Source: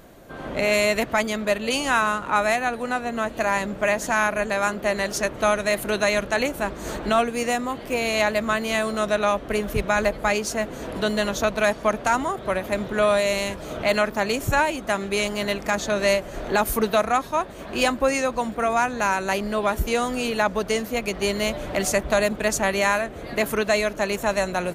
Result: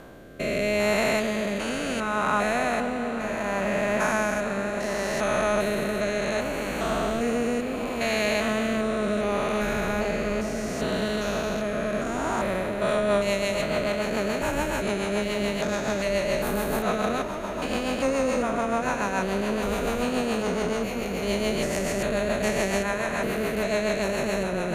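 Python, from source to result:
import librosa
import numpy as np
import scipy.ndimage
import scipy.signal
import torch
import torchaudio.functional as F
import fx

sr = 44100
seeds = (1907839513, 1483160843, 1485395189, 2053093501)

y = fx.spec_steps(x, sr, hold_ms=400)
y = fx.rotary_switch(y, sr, hz=0.7, then_hz=7.0, switch_at_s=12.44)
y = fx.echo_wet_lowpass(y, sr, ms=443, feedback_pct=82, hz=2900.0, wet_db=-13.0)
y = y * 10.0 ** (3.0 / 20.0)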